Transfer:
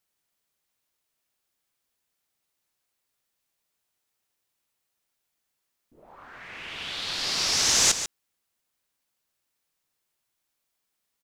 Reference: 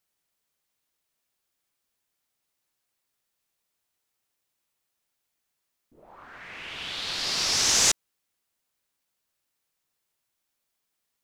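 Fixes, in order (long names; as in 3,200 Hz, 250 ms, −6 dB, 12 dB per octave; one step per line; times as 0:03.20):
echo removal 143 ms −10.5 dB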